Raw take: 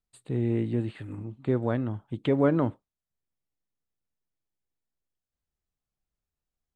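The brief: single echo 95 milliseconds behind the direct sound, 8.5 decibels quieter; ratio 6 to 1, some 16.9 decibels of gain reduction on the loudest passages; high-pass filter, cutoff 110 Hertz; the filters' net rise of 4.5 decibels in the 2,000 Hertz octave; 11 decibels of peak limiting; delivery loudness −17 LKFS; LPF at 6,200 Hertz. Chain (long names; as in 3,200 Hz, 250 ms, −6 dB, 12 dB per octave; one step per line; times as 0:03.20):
high-pass filter 110 Hz
low-pass filter 6,200 Hz
parametric band 2,000 Hz +6 dB
downward compressor 6 to 1, threshold −37 dBFS
brickwall limiter −35.5 dBFS
single-tap delay 95 ms −8.5 dB
level +28 dB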